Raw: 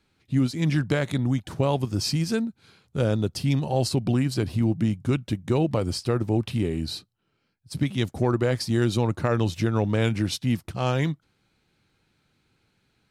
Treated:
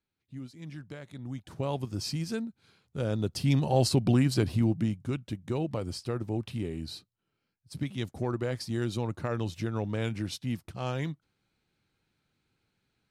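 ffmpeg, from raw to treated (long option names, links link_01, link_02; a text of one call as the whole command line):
ffmpeg -i in.wav -af "volume=-0.5dB,afade=type=in:start_time=1.12:duration=0.61:silence=0.266073,afade=type=in:start_time=3.03:duration=0.63:silence=0.421697,afade=type=out:start_time=4.38:duration=0.69:silence=0.398107" out.wav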